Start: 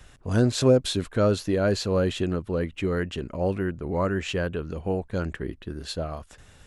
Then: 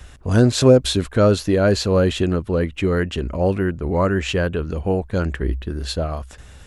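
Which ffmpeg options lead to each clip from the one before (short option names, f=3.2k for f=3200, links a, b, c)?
-af "equalizer=f=64:w=5.5:g=15,volume=6.5dB"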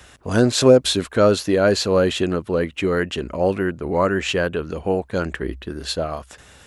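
-af "highpass=f=280:p=1,volume=2dB"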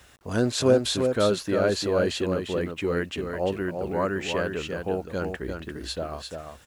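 -af "acrusher=bits=8:mix=0:aa=0.000001,aecho=1:1:347:0.531,volume=-7.5dB"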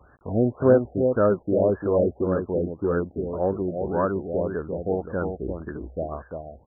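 -af "acrusher=bits=6:mode=log:mix=0:aa=0.000001,afftfilt=real='re*lt(b*sr/1024,750*pow(1800/750,0.5+0.5*sin(2*PI*1.8*pts/sr)))':imag='im*lt(b*sr/1024,750*pow(1800/750,0.5+0.5*sin(2*PI*1.8*pts/sr)))':win_size=1024:overlap=0.75,volume=2.5dB"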